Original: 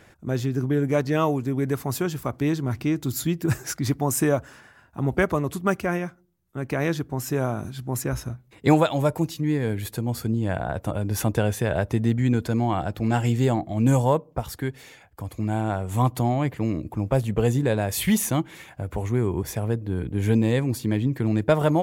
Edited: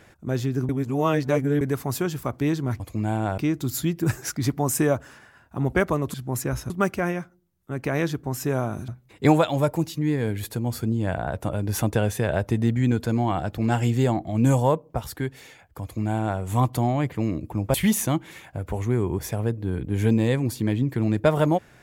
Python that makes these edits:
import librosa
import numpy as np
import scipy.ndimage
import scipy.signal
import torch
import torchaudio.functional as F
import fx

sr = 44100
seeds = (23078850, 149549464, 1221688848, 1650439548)

y = fx.edit(x, sr, fx.reverse_span(start_s=0.69, length_s=0.92),
    fx.move(start_s=7.74, length_s=0.56, to_s=5.56),
    fx.duplicate(start_s=15.24, length_s=0.58, to_s=2.8),
    fx.cut(start_s=17.16, length_s=0.82), tone=tone)